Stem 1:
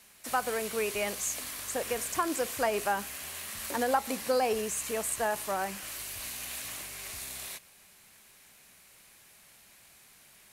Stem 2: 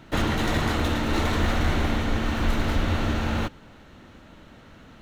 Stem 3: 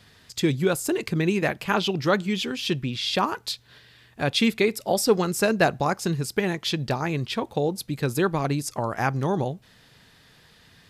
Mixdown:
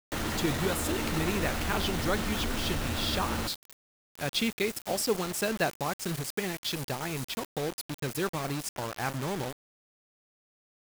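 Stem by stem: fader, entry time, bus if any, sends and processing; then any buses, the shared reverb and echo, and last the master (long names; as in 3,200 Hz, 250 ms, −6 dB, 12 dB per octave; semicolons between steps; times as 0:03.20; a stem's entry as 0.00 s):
−5.5 dB, 0.00 s, bus A, no send, phase distortion by the signal itself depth 0.14 ms; compressor whose output falls as the input rises −37 dBFS, ratio −0.5; automatic ducking −8 dB, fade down 0.25 s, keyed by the third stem
−0.5 dB, 0.00 s, bus A, no send, no processing
−9.0 dB, 0.00 s, no bus, no send, high-shelf EQ 2,400 Hz +4.5 dB
bus A: 0.0 dB, low-shelf EQ 140 Hz −3 dB; brickwall limiter −24.5 dBFS, peak gain reduction 11 dB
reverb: not used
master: bit-depth reduction 6 bits, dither none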